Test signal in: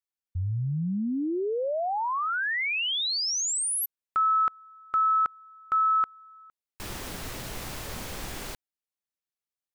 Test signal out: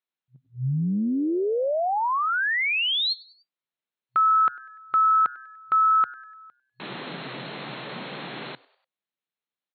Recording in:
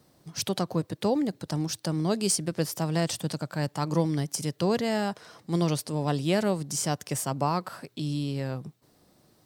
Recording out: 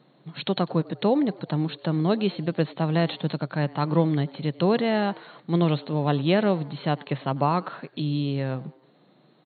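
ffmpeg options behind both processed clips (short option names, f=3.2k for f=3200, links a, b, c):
-filter_complex "[0:a]afftfilt=real='re*between(b*sr/4096,120,4300)':imag='im*between(b*sr/4096,120,4300)':win_size=4096:overlap=0.75,asplit=4[a][b][c][d];[b]adelay=98,afreqshift=130,volume=-23dB[e];[c]adelay=196,afreqshift=260,volume=-29.7dB[f];[d]adelay=294,afreqshift=390,volume=-36.5dB[g];[a][e][f][g]amix=inputs=4:normalize=0,volume=4dB"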